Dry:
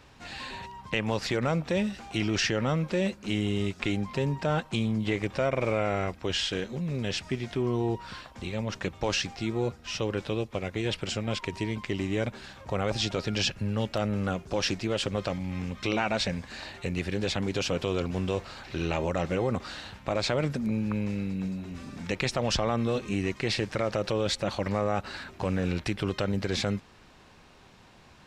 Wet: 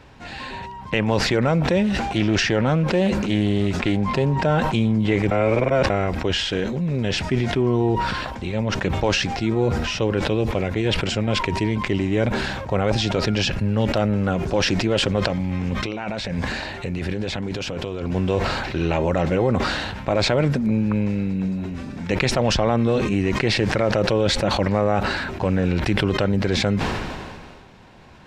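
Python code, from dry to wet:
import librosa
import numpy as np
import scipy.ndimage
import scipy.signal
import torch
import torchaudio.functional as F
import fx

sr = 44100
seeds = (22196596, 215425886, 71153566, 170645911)

y = fx.doppler_dist(x, sr, depth_ms=0.17, at=(1.84, 4.41))
y = fx.over_compress(y, sr, threshold_db=-34.0, ratio=-1.0, at=(15.22, 18.15))
y = fx.edit(y, sr, fx.reverse_span(start_s=5.31, length_s=0.59), tone=tone)
y = fx.high_shelf(y, sr, hz=3300.0, db=-9.5)
y = fx.notch(y, sr, hz=1200.0, q=13.0)
y = fx.sustainer(y, sr, db_per_s=30.0)
y = y * 10.0 ** (8.0 / 20.0)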